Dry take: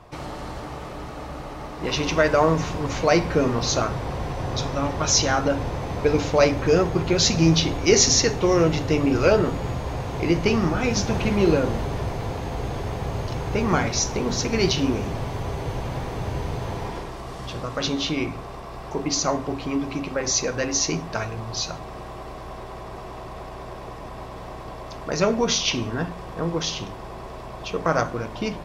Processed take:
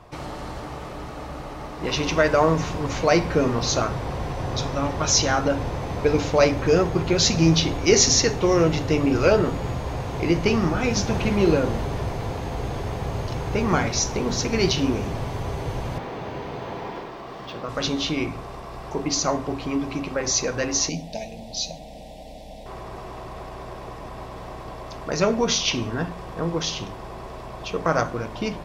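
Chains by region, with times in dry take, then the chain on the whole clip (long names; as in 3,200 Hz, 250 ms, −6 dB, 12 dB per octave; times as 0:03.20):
0:15.98–0:17.69: three-way crossover with the lows and the highs turned down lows −16 dB, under 160 Hz, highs −12 dB, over 4,800 Hz + linearly interpolated sample-rate reduction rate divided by 2×
0:20.89–0:22.66: Butterworth band-reject 1,200 Hz, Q 1.1 + parametric band 3,700 Hz +3.5 dB 0.34 octaves + phaser with its sweep stopped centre 380 Hz, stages 6
whole clip: no processing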